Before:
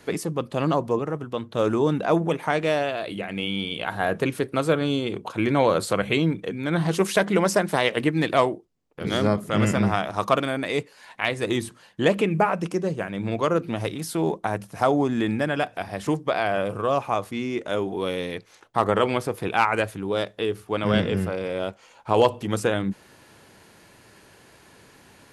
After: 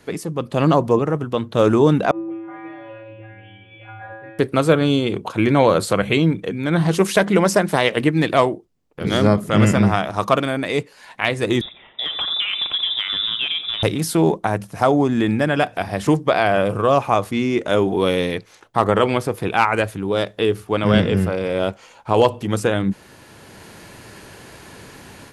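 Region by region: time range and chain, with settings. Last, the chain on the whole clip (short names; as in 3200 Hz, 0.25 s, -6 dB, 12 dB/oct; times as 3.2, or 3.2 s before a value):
2.11–4.39 LPF 2300 Hz 24 dB/oct + resonator 110 Hz, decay 1.2 s, harmonics odd, mix 100%
11.61–13.83 inverted band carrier 3700 Hz + compressor 16:1, threshold -28 dBFS + tape echo 88 ms, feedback 83%, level -7.5 dB, low-pass 1500 Hz
whole clip: low shelf 210 Hz +3.5 dB; AGC; gain -1 dB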